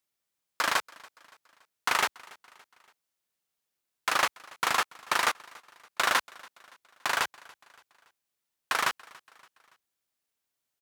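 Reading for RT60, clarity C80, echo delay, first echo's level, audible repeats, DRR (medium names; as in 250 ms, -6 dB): no reverb, no reverb, 284 ms, -23.5 dB, 2, no reverb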